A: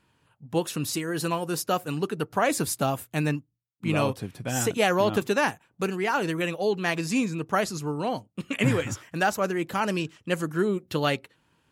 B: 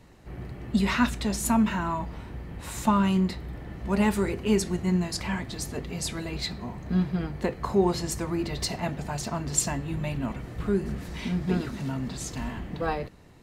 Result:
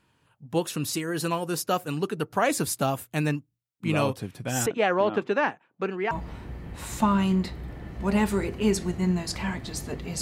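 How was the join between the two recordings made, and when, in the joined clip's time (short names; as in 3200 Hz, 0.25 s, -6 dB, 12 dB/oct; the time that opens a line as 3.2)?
A
4.66–6.11 BPF 220–2400 Hz
6.11 switch to B from 1.96 s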